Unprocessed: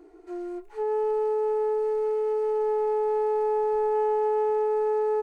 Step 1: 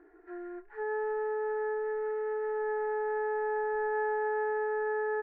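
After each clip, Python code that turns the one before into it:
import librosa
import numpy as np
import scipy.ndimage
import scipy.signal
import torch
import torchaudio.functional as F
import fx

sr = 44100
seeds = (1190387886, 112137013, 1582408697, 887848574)

y = fx.lowpass_res(x, sr, hz=1700.0, q=9.9)
y = F.gain(torch.from_numpy(y), -8.0).numpy()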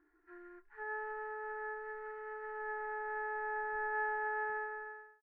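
y = fx.fade_out_tail(x, sr, length_s=0.66)
y = fx.band_shelf(y, sr, hz=530.0, db=-12.5, octaves=1.3)
y = fx.upward_expand(y, sr, threshold_db=-57.0, expansion=1.5)
y = F.gain(torch.from_numpy(y), 1.5).numpy()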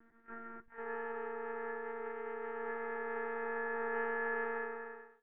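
y = fx.peak_eq(x, sr, hz=300.0, db=9.0, octaves=2.1)
y = fx.lpc_monotone(y, sr, seeds[0], pitch_hz=230.0, order=16)
y = F.gain(torch.from_numpy(y), 1.0).numpy()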